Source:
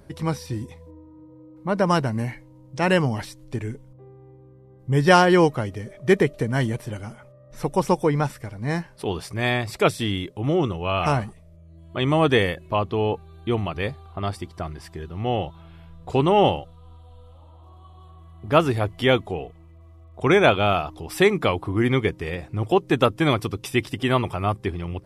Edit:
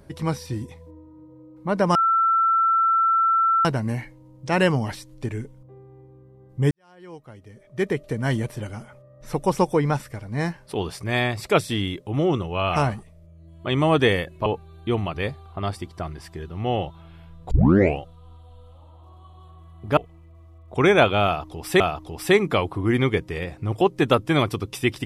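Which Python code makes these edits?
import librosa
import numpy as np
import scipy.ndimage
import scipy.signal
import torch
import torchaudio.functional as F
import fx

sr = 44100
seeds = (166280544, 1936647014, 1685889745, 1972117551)

y = fx.edit(x, sr, fx.insert_tone(at_s=1.95, length_s=1.7, hz=1340.0, db=-16.0),
    fx.fade_in_span(start_s=5.01, length_s=1.66, curve='qua'),
    fx.cut(start_s=12.76, length_s=0.3),
    fx.tape_start(start_s=16.11, length_s=0.48),
    fx.cut(start_s=18.57, length_s=0.86),
    fx.repeat(start_s=20.71, length_s=0.55, count=2), tone=tone)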